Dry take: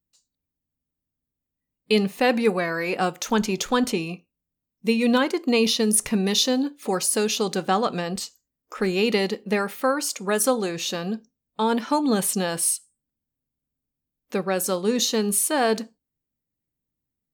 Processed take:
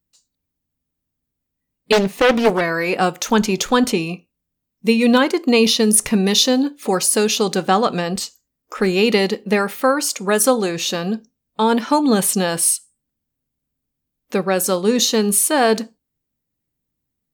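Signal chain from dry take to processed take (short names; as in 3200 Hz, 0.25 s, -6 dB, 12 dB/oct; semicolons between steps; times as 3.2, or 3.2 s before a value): 1.92–2.61 Doppler distortion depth 0.67 ms; gain +6 dB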